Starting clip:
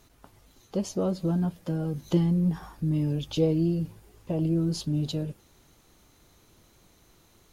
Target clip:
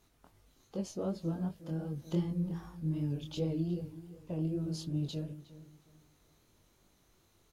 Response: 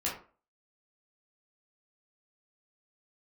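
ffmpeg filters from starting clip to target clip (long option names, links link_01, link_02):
-filter_complex "[0:a]asplit=2[link_01][link_02];[link_02]adelay=361,lowpass=frequency=2600:poles=1,volume=-15dB,asplit=2[link_03][link_04];[link_04]adelay=361,lowpass=frequency=2600:poles=1,volume=0.31,asplit=2[link_05][link_06];[link_06]adelay=361,lowpass=frequency=2600:poles=1,volume=0.31[link_07];[link_03][link_05][link_07]amix=inputs=3:normalize=0[link_08];[link_01][link_08]amix=inputs=2:normalize=0,flanger=delay=19.5:depth=6:speed=2.6,volume=-6dB"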